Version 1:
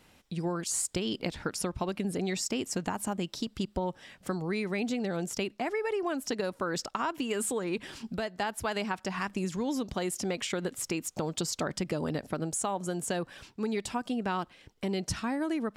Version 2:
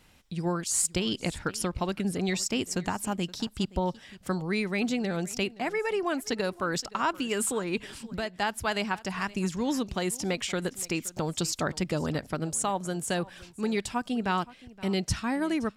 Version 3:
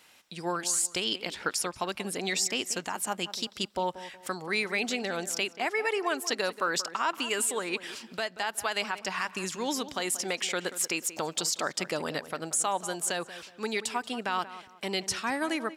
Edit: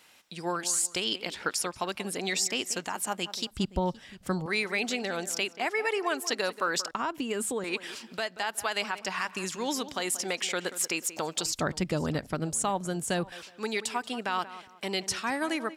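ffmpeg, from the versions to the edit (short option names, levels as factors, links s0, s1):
-filter_complex "[1:a]asplit=2[s0][s1];[2:a]asplit=4[s2][s3][s4][s5];[s2]atrim=end=3.512[s6];[s0]atrim=start=3.508:end=4.462[s7];[s3]atrim=start=4.458:end=6.912[s8];[0:a]atrim=start=6.908:end=7.642[s9];[s4]atrim=start=7.638:end=11.462[s10];[s1]atrim=start=11.458:end=13.322[s11];[s5]atrim=start=13.318[s12];[s6][s7]acrossfade=d=0.004:c1=hsin:c2=hsin[s13];[s13][s8]acrossfade=d=0.004:c1=hsin:c2=hsin[s14];[s14][s9]acrossfade=d=0.004:c1=hsin:c2=hsin[s15];[s15][s10]acrossfade=d=0.004:c1=hsin:c2=hsin[s16];[s16][s11]acrossfade=d=0.004:c1=hsin:c2=hsin[s17];[s17][s12]acrossfade=d=0.004:c1=hsin:c2=hsin"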